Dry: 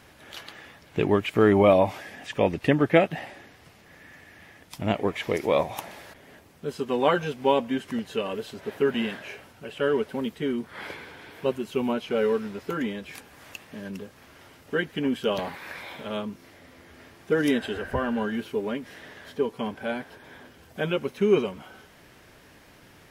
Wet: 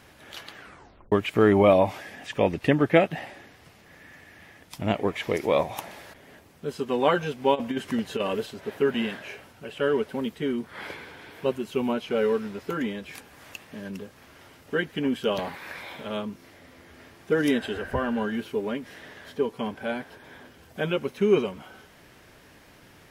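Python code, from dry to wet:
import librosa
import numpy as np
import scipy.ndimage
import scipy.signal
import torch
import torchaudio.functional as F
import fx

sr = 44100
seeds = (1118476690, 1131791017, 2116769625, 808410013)

y = fx.over_compress(x, sr, threshold_db=-27.0, ratio=-0.5, at=(7.54, 8.45), fade=0.02)
y = fx.edit(y, sr, fx.tape_stop(start_s=0.55, length_s=0.57), tone=tone)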